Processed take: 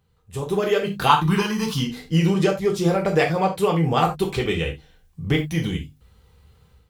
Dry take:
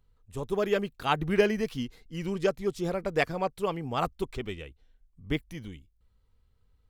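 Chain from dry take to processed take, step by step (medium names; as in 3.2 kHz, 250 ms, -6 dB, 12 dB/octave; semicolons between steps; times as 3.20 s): high-pass 53 Hz; hum notches 50/100/150/200/250 Hz; compression 3:1, threshold -39 dBFS, peak gain reduction 16.5 dB; 1.09–1.80 s: FFT filter 240 Hz 0 dB, 660 Hz -14 dB, 960 Hz +14 dB, 2 kHz -6 dB, 3.6 kHz +5 dB; level rider gain up to 11.5 dB; gated-style reverb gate 110 ms falling, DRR 0 dB; trim +5 dB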